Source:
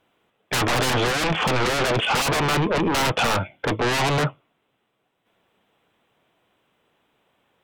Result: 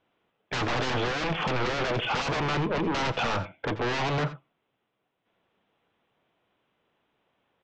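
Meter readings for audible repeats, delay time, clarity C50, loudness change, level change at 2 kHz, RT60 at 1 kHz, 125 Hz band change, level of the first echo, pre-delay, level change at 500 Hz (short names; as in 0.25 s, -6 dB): 1, 84 ms, none, -6.5 dB, -6.5 dB, none, -6.0 dB, -16.0 dB, none, -6.0 dB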